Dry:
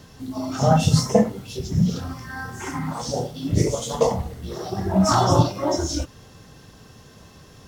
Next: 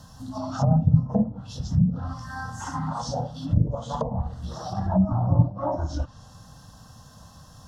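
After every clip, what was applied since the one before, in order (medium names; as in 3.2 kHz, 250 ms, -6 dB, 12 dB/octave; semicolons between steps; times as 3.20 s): low-pass that closes with the level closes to 370 Hz, closed at -15.5 dBFS; static phaser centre 940 Hz, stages 4; trim +1.5 dB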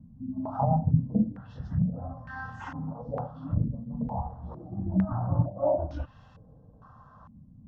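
step-sequenced low-pass 2.2 Hz 230–2400 Hz; trim -6.5 dB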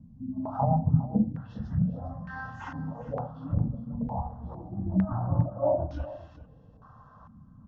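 delay 406 ms -16 dB; resampled via 16 kHz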